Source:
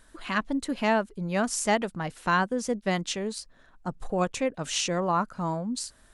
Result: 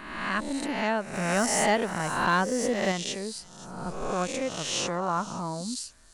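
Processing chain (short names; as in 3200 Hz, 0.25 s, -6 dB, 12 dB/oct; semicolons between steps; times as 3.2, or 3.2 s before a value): spectral swells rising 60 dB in 1.10 s; on a send: thin delay 0.521 s, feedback 56%, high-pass 4900 Hz, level -13 dB; 1.13–2.92 on the sum: sample leveller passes 1; gain -4.5 dB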